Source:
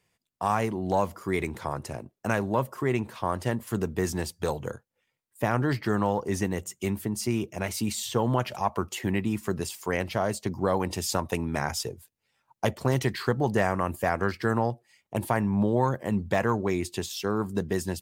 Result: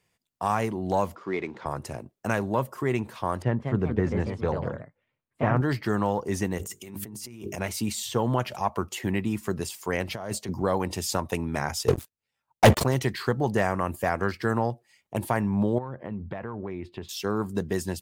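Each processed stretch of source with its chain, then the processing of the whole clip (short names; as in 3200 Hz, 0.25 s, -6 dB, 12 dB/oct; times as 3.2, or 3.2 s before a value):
1.15–1.66 CVSD 64 kbps + HPF 220 Hz + air absorption 200 m
3.42–5.61 LPF 2100 Hz + bell 100 Hz +5 dB 1.9 oct + echoes that change speed 0.2 s, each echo +2 st, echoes 2, each echo -6 dB
6.58–7.58 high shelf 8900 Hz +7 dB + notches 50/100/150/200/250/300/350/400/450 Hz + negative-ratio compressor -39 dBFS
10.08–10.62 HPF 54 Hz + negative-ratio compressor -30 dBFS, ratio -0.5
11.88–12.84 bell 73 Hz +5 dB 0.48 oct + sample leveller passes 5
15.78–17.09 compressor, threshold -29 dBFS + air absorption 410 m
whole clip: dry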